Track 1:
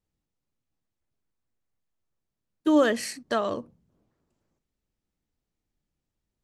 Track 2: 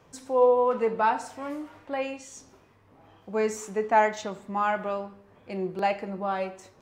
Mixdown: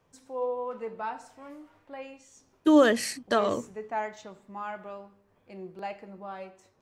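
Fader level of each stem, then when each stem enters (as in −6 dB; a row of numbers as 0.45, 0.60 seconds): +1.5, −11.0 decibels; 0.00, 0.00 seconds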